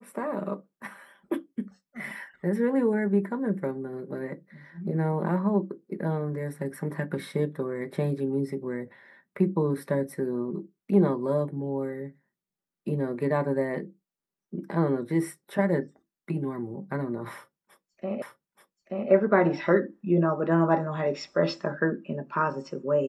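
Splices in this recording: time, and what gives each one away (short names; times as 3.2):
18.22 repeat of the last 0.88 s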